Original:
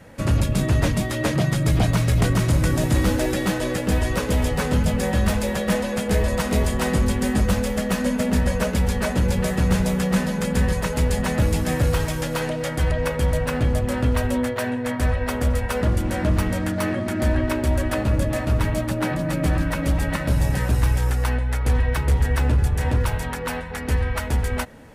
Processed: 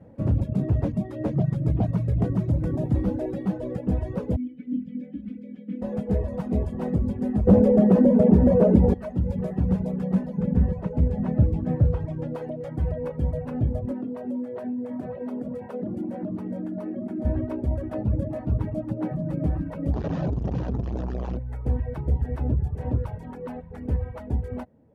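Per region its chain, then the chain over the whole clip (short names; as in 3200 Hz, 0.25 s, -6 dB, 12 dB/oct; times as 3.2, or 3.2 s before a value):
4.36–5.82 vowel filter i + comb 4 ms, depth 99%
7.47–8.94 bell 380 Hz +13 dB 2.6 oct + de-hum 250.1 Hz, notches 2 + fast leveller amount 70%
10.37–12.35 brick-wall FIR low-pass 9800 Hz + tone controls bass +4 dB, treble -8 dB
13.91–17.25 HPF 190 Hz 24 dB/oct + low shelf 320 Hz +8 dB + compressor 10:1, threshold -22 dBFS
19.93–21.37 infinite clipping + steep low-pass 6900 Hz 72 dB/oct + bell 2100 Hz -8 dB 0.21 oct
whole clip: HPF 70 Hz; reverb removal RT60 1.2 s; EQ curve 220 Hz 0 dB, 690 Hz -5 dB, 1400 Hz -18 dB, 7500 Hz -30 dB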